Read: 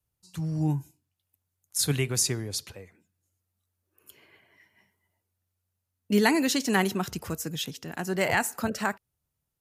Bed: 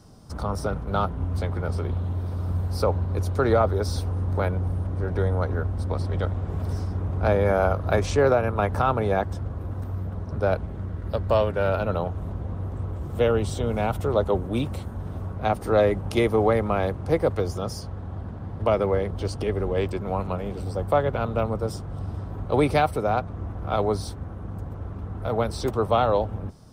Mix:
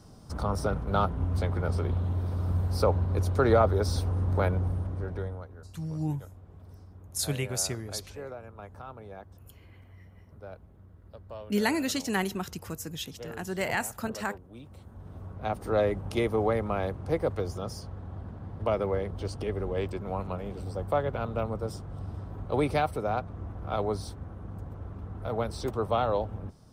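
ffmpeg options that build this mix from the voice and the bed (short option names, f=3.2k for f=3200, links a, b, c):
-filter_complex "[0:a]adelay=5400,volume=-4.5dB[a];[1:a]volume=14dB,afade=t=out:st=4.54:d=0.94:silence=0.1,afade=t=in:st=14.62:d=1.12:silence=0.16788[b];[a][b]amix=inputs=2:normalize=0"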